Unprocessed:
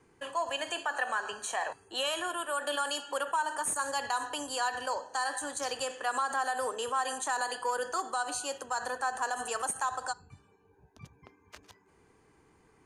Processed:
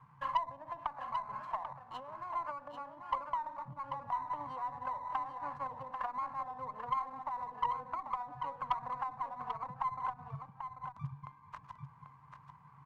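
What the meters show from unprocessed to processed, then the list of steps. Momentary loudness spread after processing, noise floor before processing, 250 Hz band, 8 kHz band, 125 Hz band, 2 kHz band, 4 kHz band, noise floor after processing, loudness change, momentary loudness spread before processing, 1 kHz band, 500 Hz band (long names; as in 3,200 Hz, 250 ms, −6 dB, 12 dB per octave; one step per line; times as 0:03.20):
14 LU, −65 dBFS, −8.5 dB, below −35 dB, can't be measured, −17.0 dB, −20.5 dB, −60 dBFS, −7.0 dB, 4 LU, −3.0 dB, −13.5 dB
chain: treble cut that deepens with the level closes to 380 Hz, closed at −30 dBFS
pair of resonant band-passes 380 Hz, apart 2.9 octaves
soft clipping −37 dBFS, distortion −17 dB
on a send: single-tap delay 790 ms −7 dB
on the sum: windowed peak hold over 3 samples
level +15 dB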